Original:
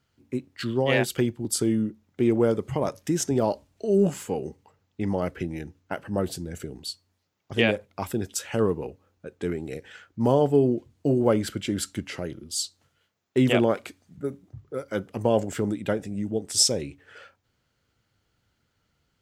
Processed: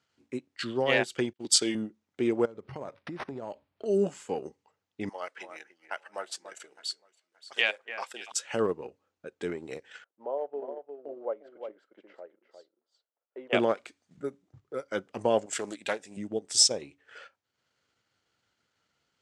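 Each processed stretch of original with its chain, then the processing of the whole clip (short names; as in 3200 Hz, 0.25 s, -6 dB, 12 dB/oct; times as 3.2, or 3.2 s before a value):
1.33–1.75 weighting filter D + expander -39 dBFS
2.45–3.86 bell 90 Hz +5.5 dB 2.1 oct + compressor 10:1, threshold -28 dBFS + decimation joined by straight lines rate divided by 6×
5.09–8.32 HPF 850 Hz + echo with dull and thin repeats by turns 0.287 s, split 2200 Hz, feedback 52%, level -10 dB
10.04–13.53 modulation noise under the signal 33 dB + ladder band-pass 670 Hz, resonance 40% + echo 0.354 s -7 dB
15.46–16.17 tilt +3 dB/oct + Doppler distortion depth 0.19 ms
whole clip: LPF 8700 Hz 24 dB/oct; transient shaper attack 0 dB, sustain -8 dB; HPF 480 Hz 6 dB/oct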